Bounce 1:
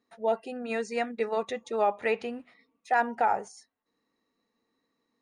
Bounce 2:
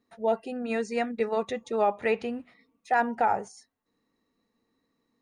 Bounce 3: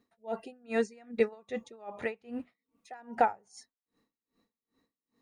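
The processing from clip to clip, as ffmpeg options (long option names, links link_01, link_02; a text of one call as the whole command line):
ffmpeg -i in.wav -af "lowshelf=frequency=200:gain=10.5" out.wav
ffmpeg -i in.wav -af "aeval=exprs='val(0)*pow(10,-31*(0.5-0.5*cos(2*PI*2.5*n/s))/20)':channel_layout=same,volume=2.5dB" out.wav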